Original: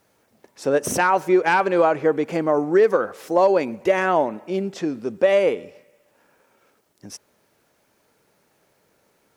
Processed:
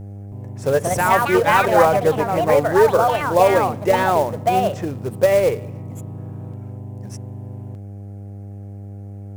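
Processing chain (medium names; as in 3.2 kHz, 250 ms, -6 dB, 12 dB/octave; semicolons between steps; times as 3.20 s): graphic EQ 125/250/500/1000/2000/4000/8000 Hz +7/-8/+5/+4/+4/-7/+4 dB; short-mantissa float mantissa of 2-bit; mains buzz 100 Hz, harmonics 8, -38 dBFS -6 dB/octave; bass shelf 210 Hz +11.5 dB; ever faster or slower copies 319 ms, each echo +4 st, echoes 2; 0.89–3.21 s: three bands expanded up and down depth 40%; trim -4 dB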